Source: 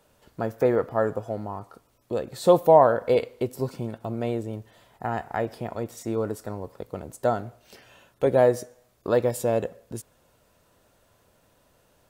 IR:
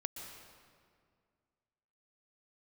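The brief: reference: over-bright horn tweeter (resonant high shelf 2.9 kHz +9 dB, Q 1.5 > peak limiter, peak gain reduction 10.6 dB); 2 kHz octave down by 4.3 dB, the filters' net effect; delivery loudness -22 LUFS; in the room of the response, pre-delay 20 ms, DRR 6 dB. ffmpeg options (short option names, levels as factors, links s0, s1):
-filter_complex "[0:a]equalizer=f=2000:t=o:g=-3.5,asplit=2[s0][s1];[1:a]atrim=start_sample=2205,adelay=20[s2];[s1][s2]afir=irnorm=-1:irlink=0,volume=0.562[s3];[s0][s3]amix=inputs=2:normalize=0,highshelf=f=2900:t=q:w=1.5:g=9,volume=2.11,alimiter=limit=0.376:level=0:latency=1"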